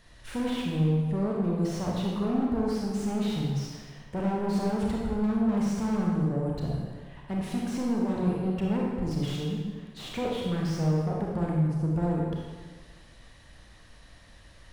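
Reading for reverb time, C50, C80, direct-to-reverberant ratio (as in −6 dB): 1.5 s, −0.5 dB, 2.0 dB, −2.5 dB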